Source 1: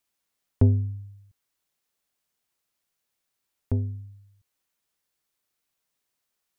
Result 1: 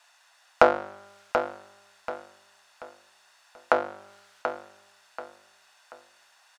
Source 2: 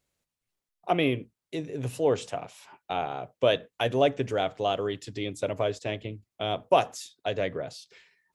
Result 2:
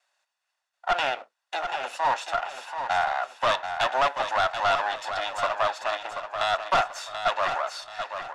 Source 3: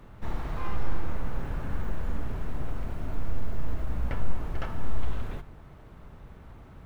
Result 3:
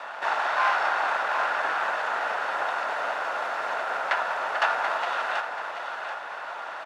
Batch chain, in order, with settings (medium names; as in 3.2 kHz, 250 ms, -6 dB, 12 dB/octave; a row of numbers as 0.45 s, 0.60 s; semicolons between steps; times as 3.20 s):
comb filter that takes the minimum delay 1.1 ms; in parallel at +3 dB: compression 4:1, threshold -39 dBFS; on the sum: Chebyshev high-pass 610 Hz, order 3; peaking EQ 1.4 kHz +12 dB 0.27 oct; hard clipper -22 dBFS; distance through air 83 m; on a send: feedback delay 734 ms, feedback 34%, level -8 dB; on the sum: normalise loudness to -27 LUFS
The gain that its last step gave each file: +19.5 dB, +5.0 dB, +13.5 dB